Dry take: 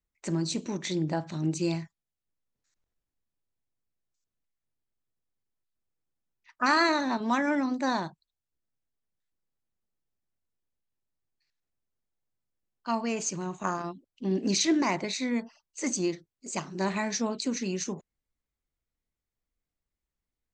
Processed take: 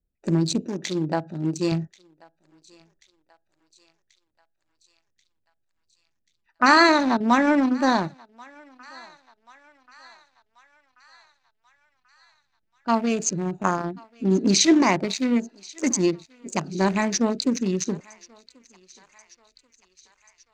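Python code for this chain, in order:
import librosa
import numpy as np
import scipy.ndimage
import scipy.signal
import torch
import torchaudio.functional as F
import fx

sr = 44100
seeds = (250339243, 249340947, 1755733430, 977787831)

y = fx.wiener(x, sr, points=41)
y = fx.low_shelf(y, sr, hz=210.0, db=-10.5, at=(0.62, 1.72))
y = fx.echo_thinned(y, sr, ms=1085, feedback_pct=65, hz=870.0, wet_db=-22.0)
y = y * 10.0 ** (8.5 / 20.0)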